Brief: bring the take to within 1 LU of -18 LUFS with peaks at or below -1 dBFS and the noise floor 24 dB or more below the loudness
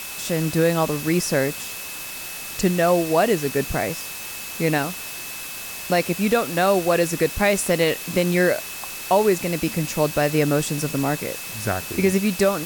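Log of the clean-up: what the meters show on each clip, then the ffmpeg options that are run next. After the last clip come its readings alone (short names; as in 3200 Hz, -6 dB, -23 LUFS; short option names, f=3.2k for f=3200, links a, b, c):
steady tone 2600 Hz; tone level -38 dBFS; noise floor -33 dBFS; noise floor target -46 dBFS; loudness -22.0 LUFS; peak -6.5 dBFS; loudness target -18.0 LUFS
-> -af "bandreject=f=2.6k:w=30"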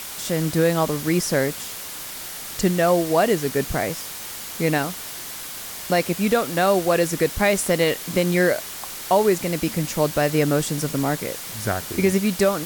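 steady tone none; noise floor -34 dBFS; noise floor target -46 dBFS
-> -af "afftdn=nr=12:nf=-34"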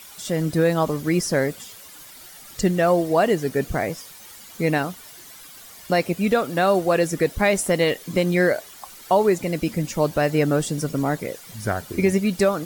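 noise floor -44 dBFS; noise floor target -46 dBFS
-> -af "afftdn=nr=6:nf=-44"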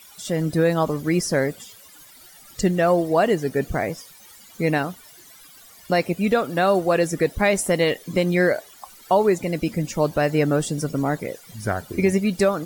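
noise floor -48 dBFS; loudness -22.0 LUFS; peak -7.5 dBFS; loudness target -18.0 LUFS
-> -af "volume=4dB"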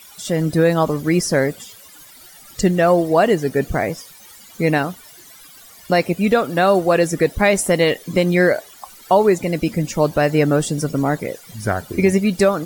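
loudness -18.0 LUFS; peak -3.5 dBFS; noise floor -44 dBFS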